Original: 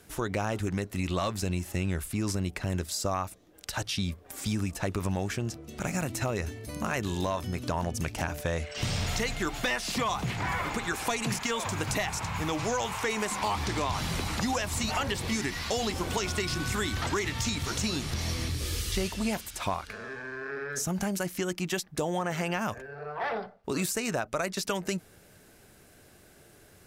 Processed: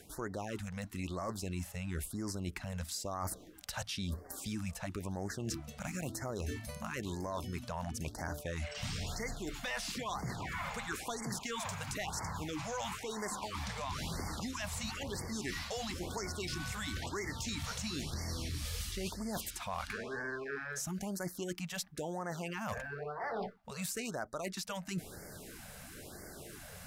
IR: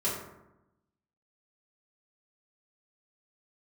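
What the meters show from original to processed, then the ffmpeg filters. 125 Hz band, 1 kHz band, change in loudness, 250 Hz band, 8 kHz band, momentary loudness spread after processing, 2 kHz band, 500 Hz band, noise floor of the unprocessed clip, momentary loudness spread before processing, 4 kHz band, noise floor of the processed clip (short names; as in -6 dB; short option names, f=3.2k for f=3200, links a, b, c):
-8.5 dB, -9.0 dB, -8.5 dB, -8.5 dB, -7.0 dB, 4 LU, -8.5 dB, -9.0 dB, -57 dBFS, 5 LU, -8.0 dB, -51 dBFS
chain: -af "equalizer=f=110:w=4.9:g=-5,areverse,acompressor=threshold=-43dB:ratio=12,areverse,aeval=exprs='0.0168*(abs(mod(val(0)/0.0168+3,4)-2)-1)':c=same,afftfilt=real='re*(1-between(b*sr/1024,300*pow(3200/300,0.5+0.5*sin(2*PI*1*pts/sr))/1.41,300*pow(3200/300,0.5+0.5*sin(2*PI*1*pts/sr))*1.41))':imag='im*(1-between(b*sr/1024,300*pow(3200/300,0.5+0.5*sin(2*PI*1*pts/sr))/1.41,300*pow(3200/300,0.5+0.5*sin(2*PI*1*pts/sr))*1.41))':win_size=1024:overlap=0.75,volume=7.5dB"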